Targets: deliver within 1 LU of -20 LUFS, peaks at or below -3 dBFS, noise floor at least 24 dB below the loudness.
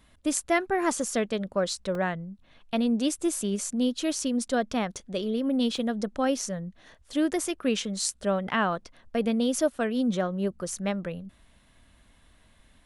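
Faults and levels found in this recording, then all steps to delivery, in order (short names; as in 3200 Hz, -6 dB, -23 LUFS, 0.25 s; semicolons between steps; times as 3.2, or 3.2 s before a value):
dropouts 2; longest dropout 2.1 ms; loudness -28.0 LUFS; peak -9.0 dBFS; loudness target -20.0 LUFS
-> interpolate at 1.95/5.77, 2.1 ms; gain +8 dB; limiter -3 dBFS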